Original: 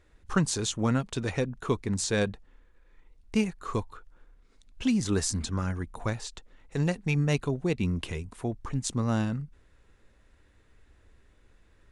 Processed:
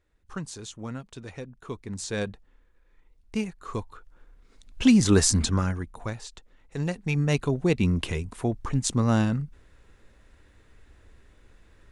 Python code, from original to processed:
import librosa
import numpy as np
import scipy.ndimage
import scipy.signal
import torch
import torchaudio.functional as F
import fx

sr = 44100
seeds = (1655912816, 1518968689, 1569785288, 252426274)

y = fx.gain(x, sr, db=fx.line((1.59, -10.0), (2.18, -3.0), (3.64, -3.0), (4.87, 8.0), (5.47, 8.0), (5.97, -2.5), (6.76, -2.5), (7.67, 5.0)))